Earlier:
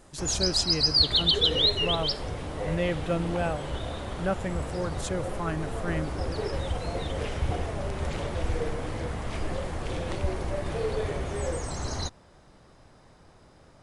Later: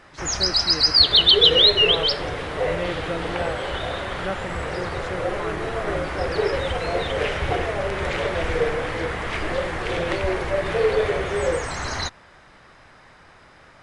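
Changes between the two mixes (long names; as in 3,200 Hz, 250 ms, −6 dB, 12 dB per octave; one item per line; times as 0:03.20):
speech: add band-pass filter 210–3,200 Hz
first sound: add parametric band 1,900 Hz +15 dB 2.2 octaves
second sound +10.5 dB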